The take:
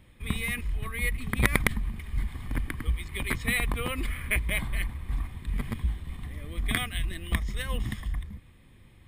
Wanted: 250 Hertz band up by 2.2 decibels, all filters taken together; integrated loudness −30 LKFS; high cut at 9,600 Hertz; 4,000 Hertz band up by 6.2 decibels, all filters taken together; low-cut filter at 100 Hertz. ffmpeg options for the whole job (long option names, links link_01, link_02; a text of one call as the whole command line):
ffmpeg -i in.wav -af "highpass=100,lowpass=9600,equalizer=frequency=250:width_type=o:gain=3,equalizer=frequency=4000:width_type=o:gain=8,volume=0.5dB" out.wav